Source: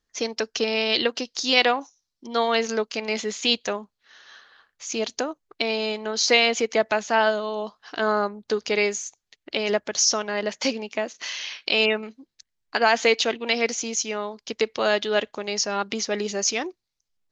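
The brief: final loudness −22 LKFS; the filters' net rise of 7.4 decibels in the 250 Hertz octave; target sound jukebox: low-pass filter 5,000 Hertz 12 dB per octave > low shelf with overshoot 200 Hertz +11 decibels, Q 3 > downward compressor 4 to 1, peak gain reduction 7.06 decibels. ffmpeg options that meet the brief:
ffmpeg -i in.wav -af "lowpass=5000,lowshelf=frequency=200:width_type=q:width=3:gain=11,equalizer=frequency=250:width_type=o:gain=8,acompressor=threshold=-21dB:ratio=4,volume=5dB" out.wav

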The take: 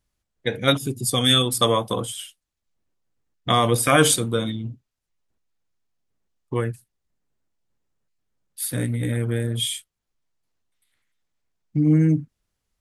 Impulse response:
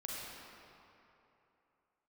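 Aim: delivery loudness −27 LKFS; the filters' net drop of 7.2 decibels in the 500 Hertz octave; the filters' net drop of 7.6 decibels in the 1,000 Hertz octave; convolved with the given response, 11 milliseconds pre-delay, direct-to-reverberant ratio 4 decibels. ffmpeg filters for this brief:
-filter_complex "[0:a]equalizer=frequency=500:width_type=o:gain=-6.5,equalizer=frequency=1000:width_type=o:gain=-8.5,asplit=2[link_01][link_02];[1:a]atrim=start_sample=2205,adelay=11[link_03];[link_02][link_03]afir=irnorm=-1:irlink=0,volume=-4.5dB[link_04];[link_01][link_04]amix=inputs=2:normalize=0,volume=-4dB"

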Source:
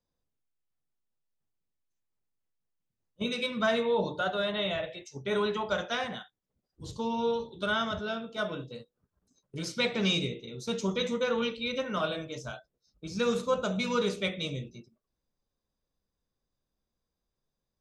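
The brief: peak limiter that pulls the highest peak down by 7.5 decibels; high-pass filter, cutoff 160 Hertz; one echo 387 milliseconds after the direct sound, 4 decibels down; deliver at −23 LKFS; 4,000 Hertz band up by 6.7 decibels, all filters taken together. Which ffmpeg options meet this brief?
ffmpeg -i in.wav -af "highpass=160,equalizer=frequency=4000:width_type=o:gain=7.5,alimiter=limit=-19.5dB:level=0:latency=1,aecho=1:1:387:0.631,volume=6.5dB" out.wav

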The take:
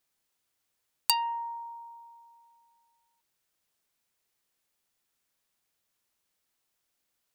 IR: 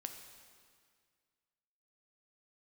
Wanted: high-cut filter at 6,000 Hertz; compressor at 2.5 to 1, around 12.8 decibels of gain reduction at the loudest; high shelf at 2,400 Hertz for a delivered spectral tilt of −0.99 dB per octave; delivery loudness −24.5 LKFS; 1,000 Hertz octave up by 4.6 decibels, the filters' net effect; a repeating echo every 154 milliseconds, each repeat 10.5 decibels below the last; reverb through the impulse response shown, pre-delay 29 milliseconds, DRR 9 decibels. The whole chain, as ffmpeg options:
-filter_complex "[0:a]lowpass=6000,equalizer=frequency=1000:width_type=o:gain=6,highshelf=frequency=2400:gain=-8.5,acompressor=threshold=-42dB:ratio=2.5,aecho=1:1:154|308|462:0.299|0.0896|0.0269,asplit=2[link_01][link_02];[1:a]atrim=start_sample=2205,adelay=29[link_03];[link_02][link_03]afir=irnorm=-1:irlink=0,volume=-6dB[link_04];[link_01][link_04]amix=inputs=2:normalize=0,volume=16.5dB"

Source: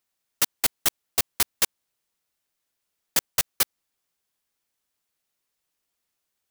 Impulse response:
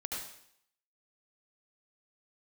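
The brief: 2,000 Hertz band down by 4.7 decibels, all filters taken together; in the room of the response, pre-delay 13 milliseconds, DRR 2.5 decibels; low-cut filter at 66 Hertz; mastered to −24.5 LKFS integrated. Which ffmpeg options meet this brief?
-filter_complex "[0:a]highpass=66,equalizer=frequency=2000:width_type=o:gain=-6,asplit=2[link_01][link_02];[1:a]atrim=start_sample=2205,adelay=13[link_03];[link_02][link_03]afir=irnorm=-1:irlink=0,volume=-4.5dB[link_04];[link_01][link_04]amix=inputs=2:normalize=0,volume=-0.5dB"

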